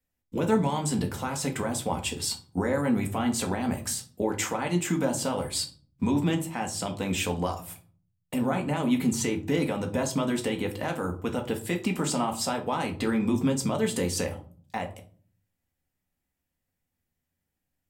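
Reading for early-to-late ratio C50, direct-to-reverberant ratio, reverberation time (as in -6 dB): 13.0 dB, 2.0 dB, 0.45 s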